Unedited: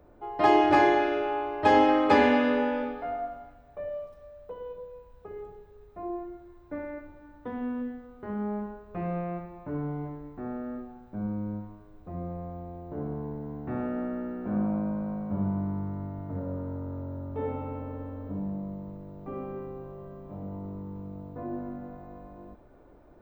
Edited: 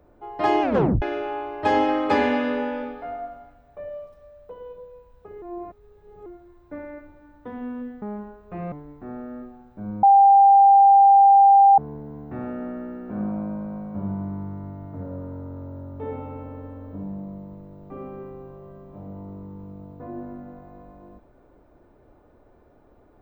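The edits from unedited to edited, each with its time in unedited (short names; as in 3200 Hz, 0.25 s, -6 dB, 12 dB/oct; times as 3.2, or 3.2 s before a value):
0.62 tape stop 0.40 s
5.42–6.26 reverse
8.02–8.45 cut
9.15–10.08 cut
11.39–13.14 bleep 793 Hz -9.5 dBFS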